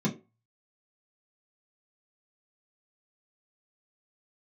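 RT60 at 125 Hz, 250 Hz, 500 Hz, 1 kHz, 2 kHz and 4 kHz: 0.25, 0.25, 0.35, 0.25, 0.25, 0.20 s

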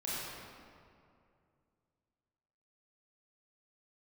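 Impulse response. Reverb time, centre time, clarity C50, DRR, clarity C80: 2.4 s, 0.162 s, -5.0 dB, -9.0 dB, -2.5 dB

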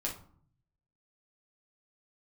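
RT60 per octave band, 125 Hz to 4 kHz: 1.1, 0.80, 0.50, 0.55, 0.35, 0.30 s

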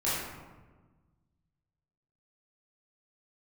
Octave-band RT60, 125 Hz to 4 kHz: 2.1, 1.8, 1.4, 1.2, 1.0, 0.65 s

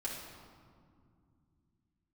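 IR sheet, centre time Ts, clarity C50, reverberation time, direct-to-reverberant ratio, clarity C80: 77 ms, 1.5 dB, 2.2 s, -6.5 dB, 3.5 dB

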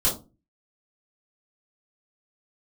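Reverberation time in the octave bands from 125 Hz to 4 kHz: 0.50, 0.45, 0.30, 0.25, 0.20, 0.20 s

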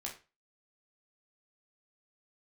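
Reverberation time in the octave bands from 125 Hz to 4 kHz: 0.35, 0.30, 0.30, 0.30, 0.30, 0.30 s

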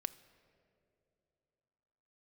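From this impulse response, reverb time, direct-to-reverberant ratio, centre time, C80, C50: 3.0 s, 12.0 dB, 5 ms, 17.5 dB, 16.5 dB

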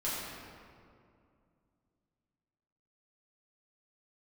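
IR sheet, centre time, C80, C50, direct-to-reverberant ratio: 0.132 s, -0.5 dB, -2.0 dB, -10.0 dB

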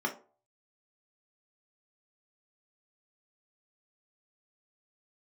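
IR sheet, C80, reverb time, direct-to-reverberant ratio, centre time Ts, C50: 18.0 dB, 0.40 s, 0.5 dB, 12 ms, 12.5 dB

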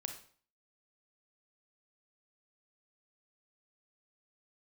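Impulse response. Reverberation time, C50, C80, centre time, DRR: 0.45 s, 8.0 dB, 12.0 dB, 17 ms, 5.0 dB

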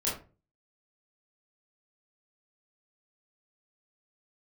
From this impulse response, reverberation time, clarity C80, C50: 0.35 s, 11.5 dB, 5.0 dB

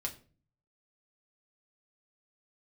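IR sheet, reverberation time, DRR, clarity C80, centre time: 0.40 s, 0.0 dB, 19.0 dB, 10 ms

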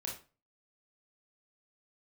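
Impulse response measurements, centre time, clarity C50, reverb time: 28 ms, 6.0 dB, 0.35 s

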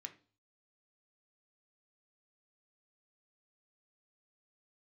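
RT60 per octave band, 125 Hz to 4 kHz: 0.65, 0.45, 0.40, 0.40, 0.35, 0.45 s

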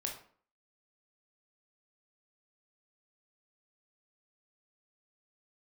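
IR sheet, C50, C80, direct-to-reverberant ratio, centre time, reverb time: 6.5 dB, 11.5 dB, 0.5 dB, 24 ms, 0.50 s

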